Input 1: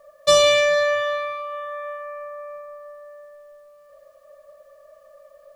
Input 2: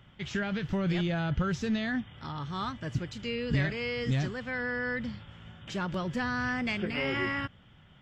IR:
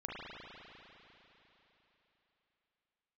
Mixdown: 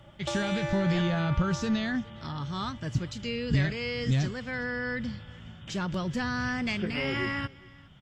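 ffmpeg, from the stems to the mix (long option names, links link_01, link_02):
-filter_complex "[0:a]equalizer=frequency=8100:width_type=o:width=0.28:gain=10,acompressor=threshold=-23dB:ratio=6,tremolo=f=250:d=0.919,volume=-4.5dB,afade=type=out:start_time=1.51:duration=0.5:silence=0.316228[link_01];[1:a]bass=frequency=250:gain=4,treble=frequency=4000:gain=12,volume=-0.5dB,asplit=2[link_02][link_03];[link_03]volume=-23.5dB,aecho=0:1:413:1[link_04];[link_01][link_02][link_04]amix=inputs=3:normalize=0,highshelf=frequency=8200:gain=-11.5"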